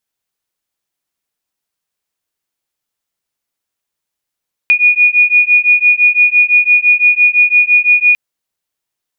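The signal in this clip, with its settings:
two tones that beat 2,450 Hz, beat 5.9 Hz, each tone −9.5 dBFS 3.45 s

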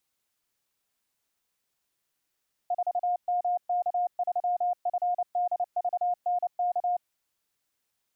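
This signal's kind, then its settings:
Morse code "4MK3FDVNK" 29 words per minute 713 Hz −23.5 dBFS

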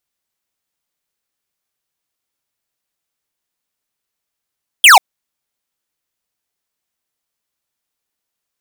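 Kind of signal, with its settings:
single falling chirp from 3,400 Hz, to 700 Hz, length 0.14 s square, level −4 dB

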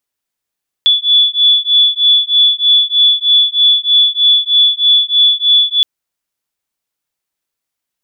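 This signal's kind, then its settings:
two tones that beat 3,440 Hz, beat 3.2 Hz, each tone −10.5 dBFS 4.97 s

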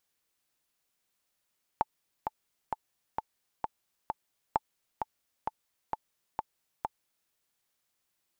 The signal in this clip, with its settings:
click track 131 BPM, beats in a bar 6, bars 2, 873 Hz, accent 6 dB −12 dBFS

